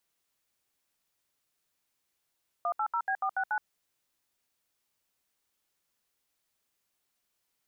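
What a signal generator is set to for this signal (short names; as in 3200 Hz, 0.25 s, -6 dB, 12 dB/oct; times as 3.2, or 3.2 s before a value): DTMF "180B469", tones 72 ms, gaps 71 ms, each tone -29.5 dBFS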